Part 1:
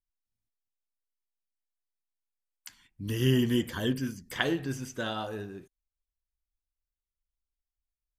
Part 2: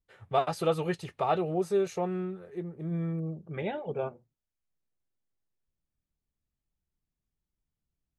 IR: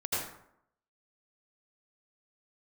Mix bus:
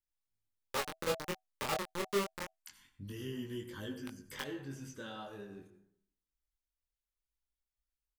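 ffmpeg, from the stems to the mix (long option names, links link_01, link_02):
-filter_complex "[0:a]acompressor=threshold=-46dB:ratio=2,volume=-1.5dB,asplit=2[link_01][link_02];[link_02]volume=-14.5dB[link_03];[1:a]acrusher=bits=3:mix=0:aa=0.000001,adelay=400,volume=-6dB[link_04];[2:a]atrim=start_sample=2205[link_05];[link_03][link_05]afir=irnorm=-1:irlink=0[link_06];[link_01][link_04][link_06]amix=inputs=3:normalize=0,flanger=delay=19:depth=6.1:speed=0.26,asuperstop=centerf=700:order=20:qfactor=7.5"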